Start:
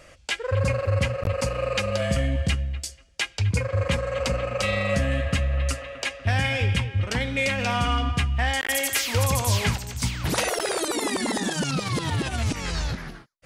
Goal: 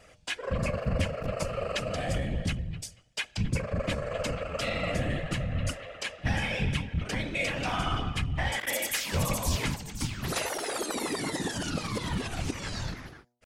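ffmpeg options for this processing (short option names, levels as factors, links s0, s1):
-af "afftfilt=real='hypot(re,im)*cos(2*PI*random(0))':imag='hypot(re,im)*sin(2*PI*random(1))':win_size=512:overlap=0.75,bandreject=f=117.4:t=h:w=4,bandreject=f=234.8:t=h:w=4,bandreject=f=352.2:t=h:w=4,bandreject=f=469.6:t=h:w=4,bandreject=f=587:t=h:w=4,bandreject=f=704.4:t=h:w=4,bandreject=f=821.8:t=h:w=4,bandreject=f=939.2:t=h:w=4,asetrate=45392,aresample=44100,atempo=0.971532"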